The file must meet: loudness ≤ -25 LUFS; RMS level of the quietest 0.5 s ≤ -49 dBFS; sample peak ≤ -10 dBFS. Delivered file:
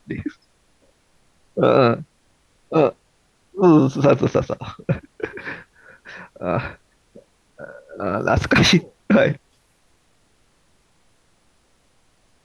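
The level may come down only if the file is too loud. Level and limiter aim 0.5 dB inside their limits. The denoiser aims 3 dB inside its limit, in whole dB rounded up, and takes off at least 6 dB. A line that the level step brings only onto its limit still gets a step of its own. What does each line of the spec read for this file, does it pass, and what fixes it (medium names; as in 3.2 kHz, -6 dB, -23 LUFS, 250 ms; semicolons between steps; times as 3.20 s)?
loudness -19.0 LUFS: fail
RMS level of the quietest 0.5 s -61 dBFS: pass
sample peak -4.5 dBFS: fail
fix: trim -6.5 dB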